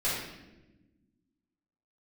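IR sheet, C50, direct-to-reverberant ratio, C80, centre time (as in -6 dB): 0.0 dB, -11.0 dB, 3.5 dB, 67 ms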